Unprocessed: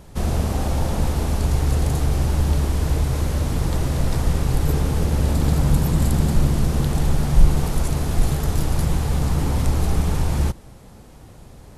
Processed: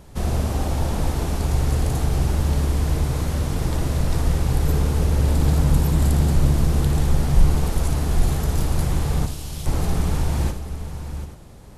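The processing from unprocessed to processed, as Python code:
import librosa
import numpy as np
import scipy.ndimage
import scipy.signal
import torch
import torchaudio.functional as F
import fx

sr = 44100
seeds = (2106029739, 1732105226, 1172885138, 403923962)

p1 = fx.steep_highpass(x, sr, hz=2700.0, slope=36, at=(9.25, 9.65), fade=0.02)
p2 = p1 + fx.echo_multitap(p1, sr, ms=(58, 737, 833), db=(-9.0, -11.5, -17.0), dry=0)
y = p2 * librosa.db_to_amplitude(-1.5)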